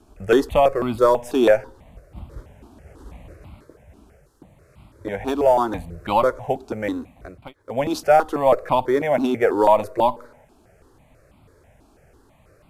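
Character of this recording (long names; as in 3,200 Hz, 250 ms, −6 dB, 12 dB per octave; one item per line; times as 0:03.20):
notches that jump at a steady rate 6.1 Hz 530–1,700 Hz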